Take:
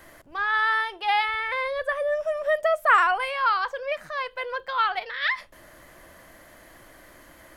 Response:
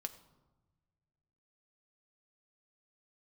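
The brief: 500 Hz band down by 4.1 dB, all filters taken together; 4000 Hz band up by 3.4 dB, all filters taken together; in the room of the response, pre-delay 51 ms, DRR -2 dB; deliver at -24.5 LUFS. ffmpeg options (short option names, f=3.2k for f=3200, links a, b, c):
-filter_complex "[0:a]equalizer=f=500:t=o:g=-5.5,equalizer=f=4k:t=o:g=4.5,asplit=2[a][b];[1:a]atrim=start_sample=2205,adelay=51[c];[b][c]afir=irnorm=-1:irlink=0,volume=4.5dB[d];[a][d]amix=inputs=2:normalize=0,volume=-4dB"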